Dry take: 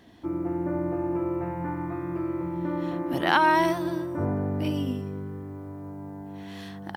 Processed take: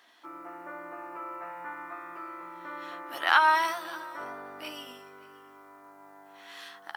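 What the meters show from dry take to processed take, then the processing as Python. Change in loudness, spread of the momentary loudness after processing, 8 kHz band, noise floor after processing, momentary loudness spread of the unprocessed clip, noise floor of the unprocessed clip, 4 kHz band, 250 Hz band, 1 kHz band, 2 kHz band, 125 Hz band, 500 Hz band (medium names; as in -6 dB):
-3.0 dB, 22 LU, +0.5 dB, -54 dBFS, 18 LU, -40 dBFS, +0.5 dB, -20.5 dB, -1.5 dB, +1.5 dB, under -30 dB, -12.0 dB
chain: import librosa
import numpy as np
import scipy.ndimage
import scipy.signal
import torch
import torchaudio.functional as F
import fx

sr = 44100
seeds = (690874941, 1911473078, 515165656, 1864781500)

y = scipy.signal.sosfilt(scipy.signal.butter(2, 1000.0, 'highpass', fs=sr, output='sos'), x)
y = fx.peak_eq(y, sr, hz=1300.0, db=6.0, octaves=0.39)
y = fx.doubler(y, sr, ms=13.0, db=-8.0)
y = y + 10.0 ** (-22.0 / 20.0) * np.pad(y, (int(580 * sr / 1000.0), 0))[:len(y)]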